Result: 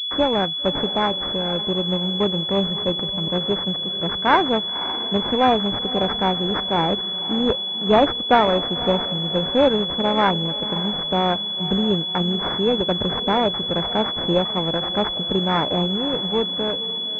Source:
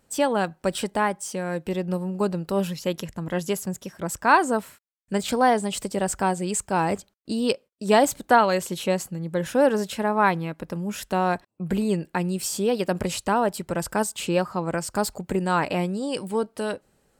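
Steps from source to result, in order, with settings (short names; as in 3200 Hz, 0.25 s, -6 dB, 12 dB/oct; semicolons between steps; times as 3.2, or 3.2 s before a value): diffused feedback echo 0.543 s, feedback 41%, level -13.5 dB; sample-and-hold 14×; pulse-width modulation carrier 3400 Hz; gain +3 dB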